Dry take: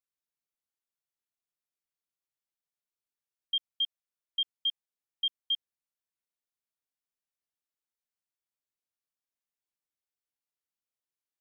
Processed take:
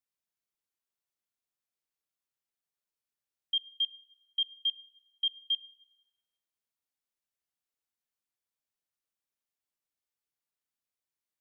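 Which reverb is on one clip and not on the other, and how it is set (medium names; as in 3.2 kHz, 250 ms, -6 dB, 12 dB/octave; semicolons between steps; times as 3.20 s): plate-style reverb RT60 1.7 s, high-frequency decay 0.6×, DRR 16 dB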